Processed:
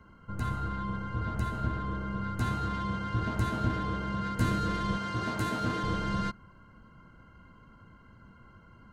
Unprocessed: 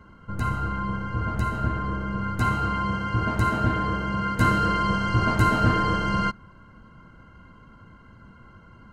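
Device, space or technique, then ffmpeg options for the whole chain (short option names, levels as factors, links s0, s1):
one-band saturation: -filter_complex "[0:a]asettb=1/sr,asplit=3[s0][s1][s2];[s0]atrim=end=4.974[s3];[s1]atrim=start=4.97:end=5.83,asetpts=PTS-STARTPTS,afade=t=in:d=0.004:c=qsin,afade=t=out:st=0.856:d=0.004:c=qsin,highpass=f=230:p=1[s4];[s2]atrim=start=5.826[s5];[s3][s4]acrossfade=d=0.004:c1=hsin:c2=qsin[s6];[s6][s5]acrossfade=d=0.004:c1=qsin:c2=hsin,acrossover=split=520|4500[s7][s8][s9];[s8]asoftclip=type=tanh:threshold=0.0422[s10];[s7][s10][s9]amix=inputs=3:normalize=0,volume=0.531"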